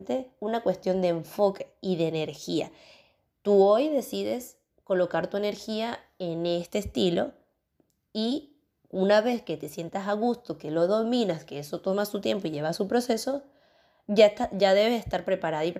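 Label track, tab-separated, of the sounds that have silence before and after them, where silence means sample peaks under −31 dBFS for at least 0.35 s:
3.460000	4.410000	sound
4.900000	7.290000	sound
8.150000	8.380000	sound
8.940000	13.380000	sound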